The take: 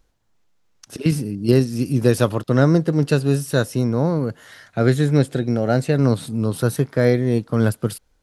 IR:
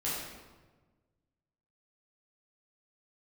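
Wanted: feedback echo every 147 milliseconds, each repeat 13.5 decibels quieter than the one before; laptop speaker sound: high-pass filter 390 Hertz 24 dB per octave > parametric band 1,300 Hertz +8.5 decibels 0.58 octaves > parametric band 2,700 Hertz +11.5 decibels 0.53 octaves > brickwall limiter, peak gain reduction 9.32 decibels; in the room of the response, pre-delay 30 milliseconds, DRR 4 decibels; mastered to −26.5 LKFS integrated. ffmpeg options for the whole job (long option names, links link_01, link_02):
-filter_complex "[0:a]aecho=1:1:147|294:0.211|0.0444,asplit=2[link_01][link_02];[1:a]atrim=start_sample=2205,adelay=30[link_03];[link_02][link_03]afir=irnorm=-1:irlink=0,volume=-9.5dB[link_04];[link_01][link_04]amix=inputs=2:normalize=0,highpass=frequency=390:width=0.5412,highpass=frequency=390:width=1.3066,equalizer=frequency=1300:width_type=o:width=0.58:gain=8.5,equalizer=frequency=2700:width_type=o:width=0.53:gain=11.5,volume=-3dB,alimiter=limit=-14.5dB:level=0:latency=1"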